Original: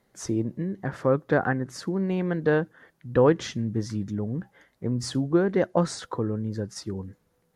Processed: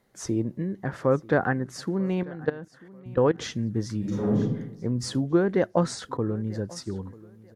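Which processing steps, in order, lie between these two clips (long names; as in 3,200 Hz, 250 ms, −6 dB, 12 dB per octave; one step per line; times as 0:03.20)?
0:02.23–0:03.38: output level in coarse steps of 19 dB
0:06.17–0:06.95: downward expander −37 dBFS
repeating echo 940 ms, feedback 24%, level −21.5 dB
0:03.99–0:04.39: thrown reverb, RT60 0.87 s, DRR −6.5 dB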